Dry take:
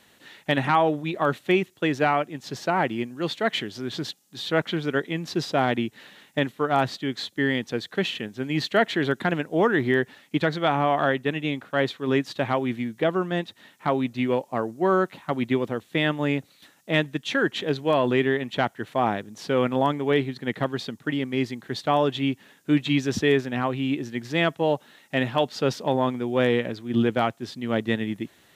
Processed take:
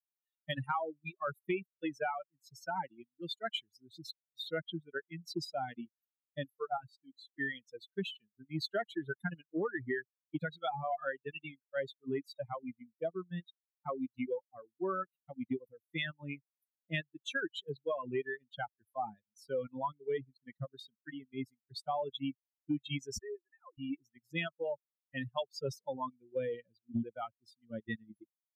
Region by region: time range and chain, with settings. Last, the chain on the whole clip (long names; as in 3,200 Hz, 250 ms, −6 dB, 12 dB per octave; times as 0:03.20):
0:06.77–0:07.29: low-shelf EQ 100 Hz +4 dB + tuned comb filter 55 Hz, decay 0.56 s, harmonics odd, mix 50% + one half of a high-frequency compander decoder only
0:23.18–0:23.78: three sine waves on the formant tracks + downward compressor, threshold −25 dBFS
whole clip: spectral dynamics exaggerated over time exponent 3; reverb reduction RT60 1.6 s; downward compressor, threshold −30 dBFS; level −1.5 dB